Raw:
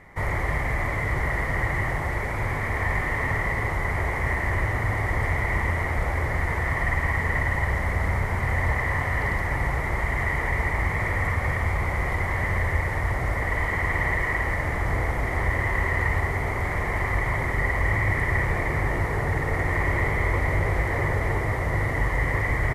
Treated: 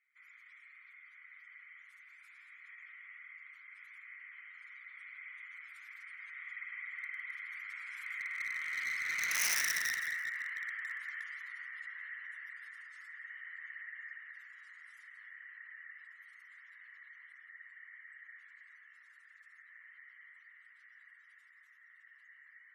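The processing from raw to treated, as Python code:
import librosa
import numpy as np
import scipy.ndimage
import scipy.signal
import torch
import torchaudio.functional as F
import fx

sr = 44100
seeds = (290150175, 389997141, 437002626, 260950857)

y = fx.doppler_pass(x, sr, speed_mps=15, closest_m=2.2, pass_at_s=9.47)
y = fx.rider(y, sr, range_db=4, speed_s=2.0)
y = scipy.signal.sosfilt(scipy.signal.ellip(4, 1.0, 60, 1400.0, 'highpass', fs=sr, output='sos'), y)
y = fx.spec_gate(y, sr, threshold_db=-30, keep='strong')
y = fx.high_shelf(y, sr, hz=3700.0, db=9.5)
y = (np.mod(10.0 ** (29.0 / 20.0) * y + 1.0, 2.0) - 1.0) / 10.0 ** (29.0 / 20.0)
y = fx.echo_feedback(y, sr, ms=168, feedback_pct=33, wet_db=-17)
y = fx.clip_asym(y, sr, top_db=-38.5, bottom_db=-33.5)
y = fx.tilt_eq(y, sr, slope=2.5)
y = F.gain(torch.from_numpy(y), 2.0).numpy()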